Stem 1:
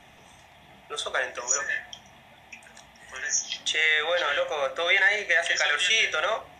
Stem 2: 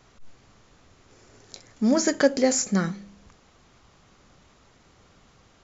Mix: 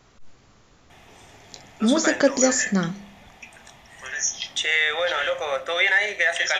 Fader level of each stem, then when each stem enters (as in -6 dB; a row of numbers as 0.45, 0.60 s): +1.5, +1.0 dB; 0.90, 0.00 s